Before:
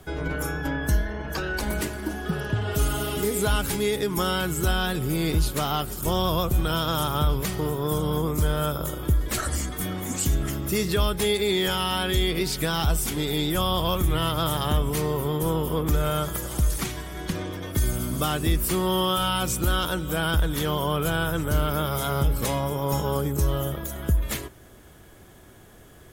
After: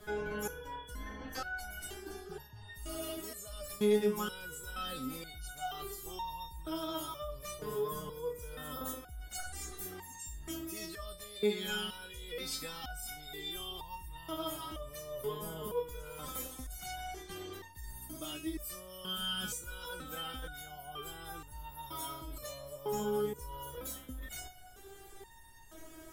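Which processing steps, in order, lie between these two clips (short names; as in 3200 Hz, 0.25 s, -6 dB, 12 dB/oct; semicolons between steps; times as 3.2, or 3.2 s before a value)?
reverse; compressor 16:1, threshold -34 dBFS, peak gain reduction 18 dB; reverse; stepped resonator 2.1 Hz 210–910 Hz; gain +14.5 dB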